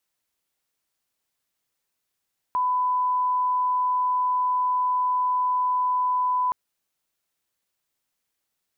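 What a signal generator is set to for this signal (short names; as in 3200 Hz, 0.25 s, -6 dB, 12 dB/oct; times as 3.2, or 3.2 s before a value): line-up tone -20 dBFS 3.97 s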